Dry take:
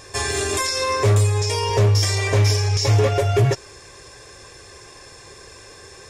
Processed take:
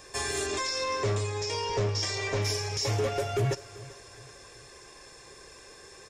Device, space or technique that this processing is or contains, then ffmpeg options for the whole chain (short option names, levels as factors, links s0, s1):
one-band saturation: -filter_complex "[0:a]asettb=1/sr,asplit=3[s0][s1][s2];[s0]atrim=end=0.464[s3];[s1]atrim=start=0.46:end=2.42,asetpts=PTS-STARTPTS,afade=t=in:d=0.004:c=qsin,afade=t=out:st=1.956:d=0.004:c=qsin,lowpass=f=6900:w=0.5412,lowpass=f=6900:w=1.3066[s4];[s2]atrim=start=2.416[s5];[s3][s4]acrossfade=d=0.004:c1=hsin:c2=qsin[s6];[s6][s5]acrossfade=d=0.004:c1=qsin:c2=hsin,acrossover=split=310|4900[s7][s8][s9];[s8]asoftclip=type=tanh:threshold=0.126[s10];[s7][s10][s9]amix=inputs=3:normalize=0,equalizer=f=93:t=o:w=0.44:g=-12.5,aecho=1:1:389|778|1167:0.112|0.0482|0.0207,volume=0.447"